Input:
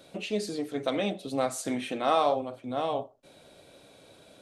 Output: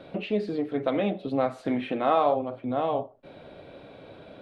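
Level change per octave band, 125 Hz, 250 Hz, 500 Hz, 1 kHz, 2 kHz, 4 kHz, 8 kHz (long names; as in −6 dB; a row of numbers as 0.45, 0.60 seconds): +4.5 dB, +4.0 dB, +3.0 dB, +2.0 dB, 0.0 dB, −5.0 dB, below −20 dB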